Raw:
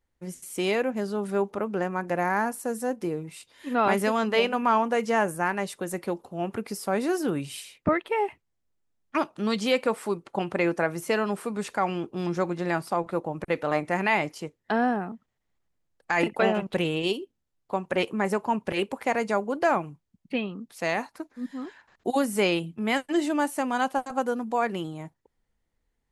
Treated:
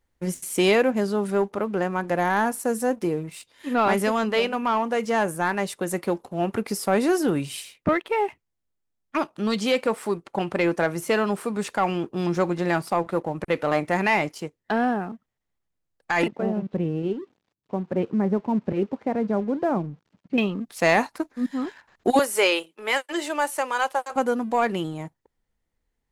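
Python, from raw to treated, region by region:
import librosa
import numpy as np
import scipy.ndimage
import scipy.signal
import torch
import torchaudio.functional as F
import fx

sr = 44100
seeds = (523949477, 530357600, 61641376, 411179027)

y = fx.chain(x, sr, fx.crossing_spikes(level_db=-26.0),
    fx.bandpass_q(hz=170.0, q=0.81),
    fx.air_absorb(metres=130.0), at=(16.28, 20.38))
y = fx.chain(y, sr, fx.highpass(hz=430.0, slope=24),
    fx.notch(hz=710.0, q=5.2), at=(22.19, 24.16))
y = fx.leveller(y, sr, passes=1)
y = fx.rider(y, sr, range_db=10, speed_s=2.0)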